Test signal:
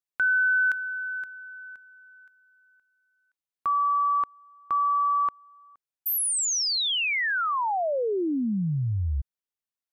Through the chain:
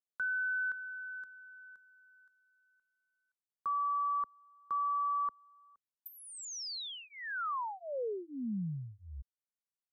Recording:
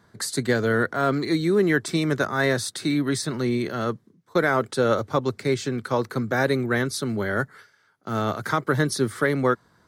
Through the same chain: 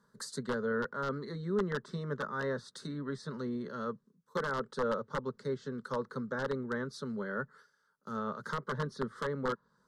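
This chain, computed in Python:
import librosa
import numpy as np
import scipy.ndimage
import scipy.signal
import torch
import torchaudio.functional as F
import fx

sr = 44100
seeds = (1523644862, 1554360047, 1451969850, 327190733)

y = (np.mod(10.0 ** (11.5 / 20.0) * x + 1.0, 2.0) - 1.0) / 10.0 ** (11.5 / 20.0)
y = fx.env_lowpass_down(y, sr, base_hz=2500.0, full_db=-20.0)
y = fx.fixed_phaser(y, sr, hz=480.0, stages=8)
y = y * 10.0 ** (-9.0 / 20.0)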